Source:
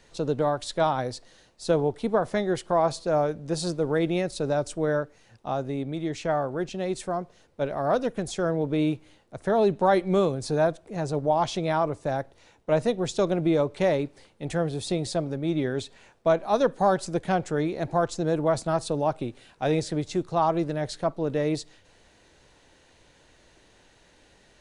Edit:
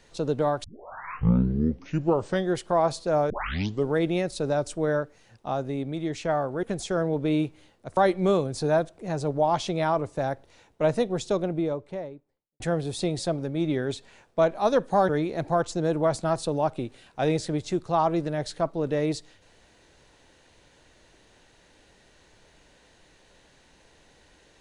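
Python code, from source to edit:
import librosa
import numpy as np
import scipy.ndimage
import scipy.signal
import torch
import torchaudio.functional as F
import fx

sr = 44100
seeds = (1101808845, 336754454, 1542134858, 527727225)

y = fx.studio_fade_out(x, sr, start_s=12.76, length_s=1.72)
y = fx.edit(y, sr, fx.tape_start(start_s=0.64, length_s=1.92),
    fx.tape_start(start_s=3.3, length_s=0.58),
    fx.cut(start_s=6.63, length_s=1.48),
    fx.cut(start_s=9.45, length_s=0.4),
    fx.cut(start_s=16.97, length_s=0.55), tone=tone)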